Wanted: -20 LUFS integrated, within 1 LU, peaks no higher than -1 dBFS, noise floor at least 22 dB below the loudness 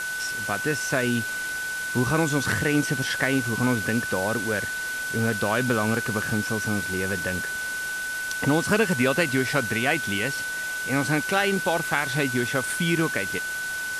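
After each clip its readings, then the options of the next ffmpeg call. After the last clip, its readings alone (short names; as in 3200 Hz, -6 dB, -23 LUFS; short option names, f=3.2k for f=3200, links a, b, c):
steady tone 1500 Hz; tone level -28 dBFS; noise floor -30 dBFS; noise floor target -47 dBFS; loudness -24.5 LUFS; peak -7.5 dBFS; loudness target -20.0 LUFS
-> -af "bandreject=f=1.5k:w=30"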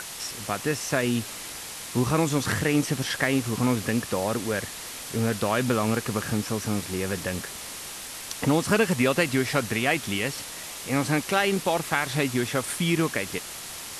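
steady tone none; noise floor -38 dBFS; noise floor target -49 dBFS
-> -af "afftdn=nr=11:nf=-38"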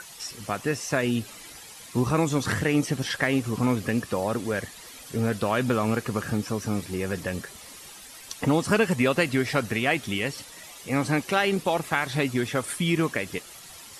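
noise floor -45 dBFS; noise floor target -49 dBFS
-> -af "afftdn=nr=6:nf=-45"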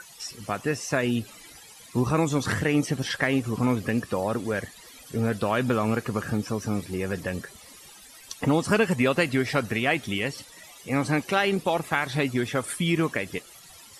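noise floor -49 dBFS; loudness -26.5 LUFS; peak -8.0 dBFS; loudness target -20.0 LUFS
-> -af "volume=6.5dB"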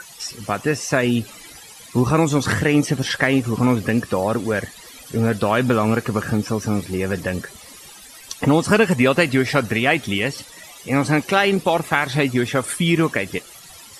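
loudness -20.0 LUFS; peak -1.5 dBFS; noise floor -42 dBFS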